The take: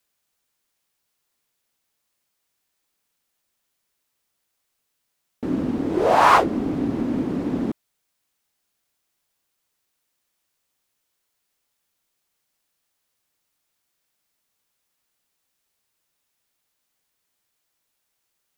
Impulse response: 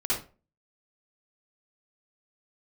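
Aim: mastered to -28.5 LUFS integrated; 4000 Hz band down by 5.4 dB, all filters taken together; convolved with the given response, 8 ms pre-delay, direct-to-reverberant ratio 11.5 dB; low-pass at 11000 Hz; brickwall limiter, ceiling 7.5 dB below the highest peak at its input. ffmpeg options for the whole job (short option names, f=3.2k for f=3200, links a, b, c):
-filter_complex "[0:a]lowpass=11k,equalizer=f=4k:t=o:g=-7.5,alimiter=limit=-10dB:level=0:latency=1,asplit=2[a][b];[1:a]atrim=start_sample=2205,adelay=8[c];[b][c]afir=irnorm=-1:irlink=0,volume=-19.5dB[d];[a][d]amix=inputs=2:normalize=0,volume=-6dB"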